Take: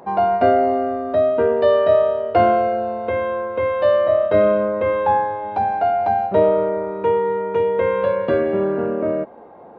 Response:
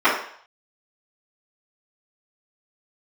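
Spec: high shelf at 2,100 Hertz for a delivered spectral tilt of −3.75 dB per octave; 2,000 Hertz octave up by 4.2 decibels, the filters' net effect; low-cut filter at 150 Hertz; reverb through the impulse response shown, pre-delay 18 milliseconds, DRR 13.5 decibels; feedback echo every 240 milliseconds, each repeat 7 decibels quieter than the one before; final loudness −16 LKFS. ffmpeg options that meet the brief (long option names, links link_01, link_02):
-filter_complex "[0:a]highpass=150,equalizer=frequency=2000:width_type=o:gain=3.5,highshelf=frequency=2100:gain=3.5,aecho=1:1:240|480|720|960|1200:0.447|0.201|0.0905|0.0407|0.0183,asplit=2[link_01][link_02];[1:a]atrim=start_sample=2205,adelay=18[link_03];[link_02][link_03]afir=irnorm=-1:irlink=0,volume=-36.5dB[link_04];[link_01][link_04]amix=inputs=2:normalize=0,volume=-0.5dB"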